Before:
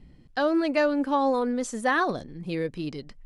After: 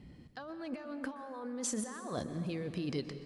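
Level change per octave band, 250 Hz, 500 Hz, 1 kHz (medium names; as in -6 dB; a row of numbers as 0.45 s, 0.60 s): -11.5 dB, -15.5 dB, -19.0 dB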